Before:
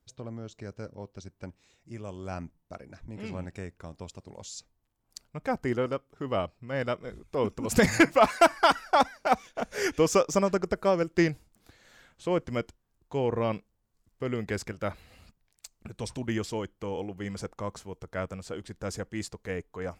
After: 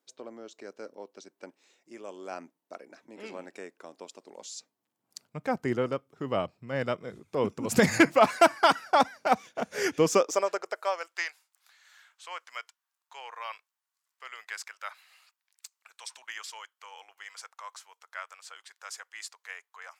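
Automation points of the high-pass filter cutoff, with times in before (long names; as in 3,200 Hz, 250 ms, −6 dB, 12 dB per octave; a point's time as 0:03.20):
high-pass filter 24 dB per octave
0:04.32 290 Hz
0:05.45 110 Hz
0:10.00 110 Hz
0:10.37 410 Hz
0:11.31 1,000 Hz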